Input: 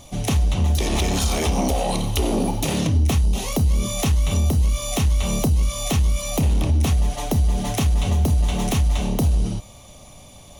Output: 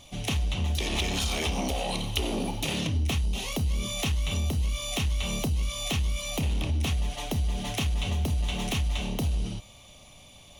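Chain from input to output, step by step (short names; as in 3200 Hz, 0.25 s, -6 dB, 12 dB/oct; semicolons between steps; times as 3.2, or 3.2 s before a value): bell 2900 Hz +9.5 dB 1.2 oct; gain -9 dB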